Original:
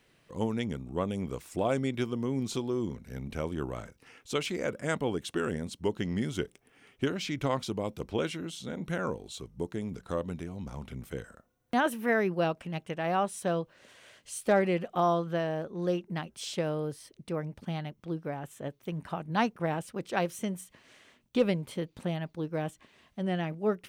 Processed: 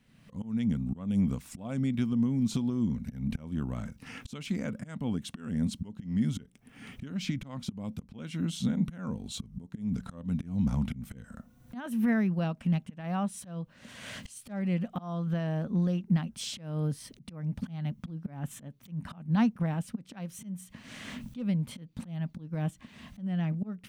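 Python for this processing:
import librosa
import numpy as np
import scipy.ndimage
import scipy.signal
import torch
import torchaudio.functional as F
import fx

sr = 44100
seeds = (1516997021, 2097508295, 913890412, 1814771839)

y = fx.recorder_agc(x, sr, target_db=-22.0, rise_db_per_s=35.0, max_gain_db=30)
y = fx.auto_swell(y, sr, attack_ms=257.0)
y = fx.low_shelf_res(y, sr, hz=290.0, db=7.5, q=3.0)
y = y * 10.0 ** (-6.0 / 20.0)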